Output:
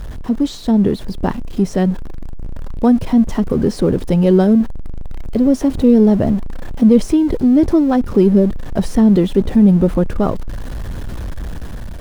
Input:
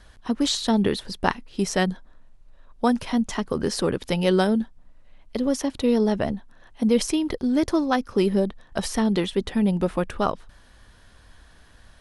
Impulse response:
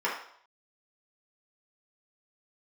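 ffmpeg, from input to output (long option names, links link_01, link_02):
-af "aeval=exprs='val(0)+0.5*0.0398*sgn(val(0))':channel_layout=same,dynaudnorm=framelen=320:gausssize=5:maxgain=4.5dB,tiltshelf=frequency=750:gain=9.5,volume=-1.5dB"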